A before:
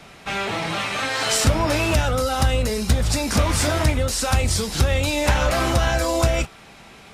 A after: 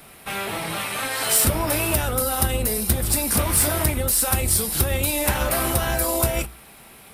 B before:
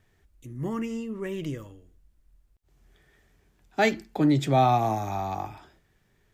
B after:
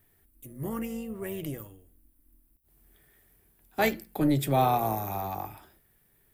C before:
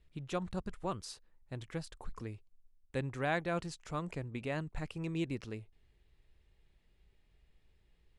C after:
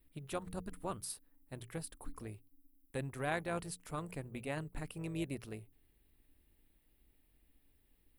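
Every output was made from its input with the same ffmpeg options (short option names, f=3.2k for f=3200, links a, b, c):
-af "aexciter=amount=5.3:drive=9.2:freq=9.2k,bandreject=f=60:t=h:w=6,bandreject=f=120:t=h:w=6,bandreject=f=180:t=h:w=6,tremolo=f=280:d=0.462,volume=-1dB"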